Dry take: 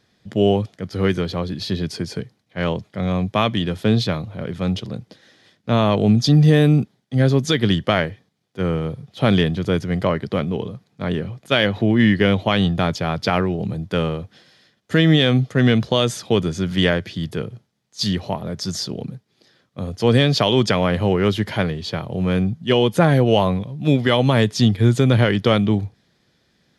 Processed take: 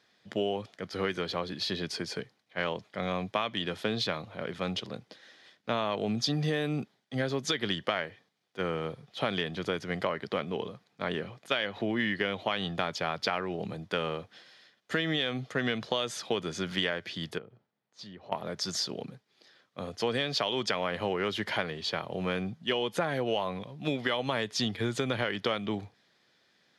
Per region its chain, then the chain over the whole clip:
0:17.38–0:18.32: low-pass filter 1,000 Hz 6 dB per octave + downward compressor 2 to 1, threshold −43 dBFS
whole clip: high-pass filter 820 Hz 6 dB per octave; high-shelf EQ 6,800 Hz −10.5 dB; downward compressor, threshold −26 dBFS

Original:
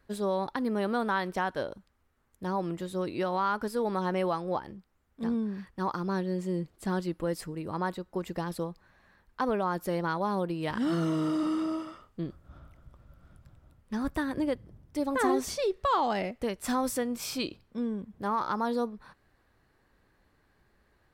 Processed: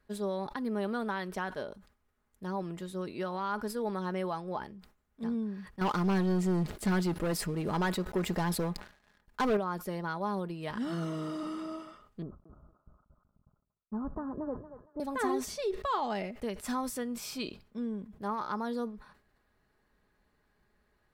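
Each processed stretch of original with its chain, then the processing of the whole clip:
0:05.81–0:09.57: notch filter 1,100 Hz, Q 19 + leveller curve on the samples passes 3
0:12.22–0:15.00: noise gate −52 dBFS, range −39 dB + Butterworth low-pass 1,300 Hz 48 dB per octave + feedback echo with a high-pass in the loop 231 ms, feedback 40%, high-pass 950 Hz, level −6 dB
whole clip: comb filter 4.8 ms, depth 35%; level that may fall only so fast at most 130 dB per second; level −5.5 dB

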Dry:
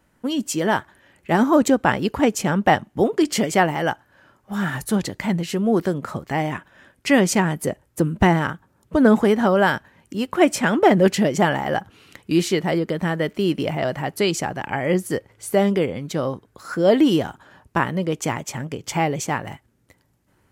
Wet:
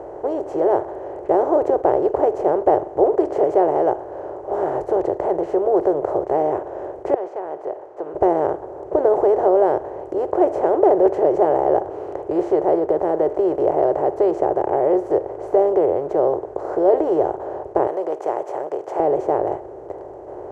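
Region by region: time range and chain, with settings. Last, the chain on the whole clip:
0:07.14–0:08.15: high-pass filter 1,000 Hz + downward compressor 3 to 1, threshold −42 dBFS + high-frequency loss of the air 200 metres
0:17.87–0:19.00: high-pass filter 950 Hz + high-shelf EQ 4,900 Hz +11.5 dB
whole clip: compressor on every frequency bin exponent 0.4; drawn EQ curve 100 Hz 0 dB, 150 Hz −4 dB, 220 Hz −22 dB, 370 Hz +13 dB, 750 Hz +10 dB, 1,800 Hz −12 dB, 3,000 Hz −19 dB, 6,300 Hz −21 dB, 12,000 Hz −29 dB; level −13.5 dB

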